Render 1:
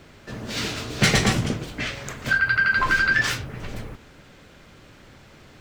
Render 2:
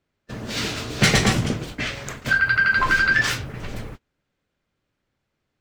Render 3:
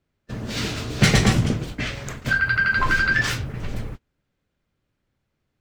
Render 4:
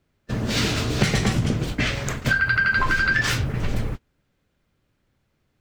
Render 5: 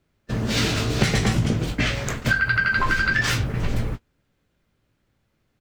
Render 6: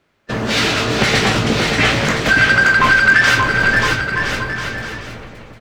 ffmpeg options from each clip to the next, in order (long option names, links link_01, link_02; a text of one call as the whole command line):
ffmpeg -i in.wav -af "agate=range=-30dB:threshold=-36dB:ratio=16:detection=peak,volume=1.5dB" out.wav
ffmpeg -i in.wav -af "lowshelf=frequency=230:gain=7,volume=-2dB" out.wav
ffmpeg -i in.wav -af "acompressor=threshold=-22dB:ratio=12,volume=5.5dB" out.wav
ffmpeg -i in.wav -filter_complex "[0:a]asplit=2[link_01][link_02];[link_02]adelay=18,volume=-11dB[link_03];[link_01][link_03]amix=inputs=2:normalize=0" out.wav
ffmpeg -i in.wav -filter_complex "[0:a]asplit=2[link_01][link_02];[link_02]highpass=frequency=720:poles=1,volume=18dB,asoftclip=type=tanh:threshold=-4.5dB[link_03];[link_01][link_03]amix=inputs=2:normalize=0,lowpass=frequency=2700:poles=1,volume=-6dB,aecho=1:1:580|1015|1341|1586|1769:0.631|0.398|0.251|0.158|0.1,volume=1.5dB" out.wav